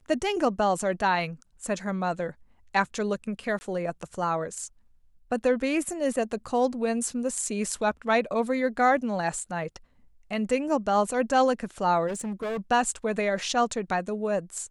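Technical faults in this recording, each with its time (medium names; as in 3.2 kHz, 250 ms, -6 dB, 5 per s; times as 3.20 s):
3.59–3.61 s: dropout 20 ms
12.07–12.59 s: clipped -28 dBFS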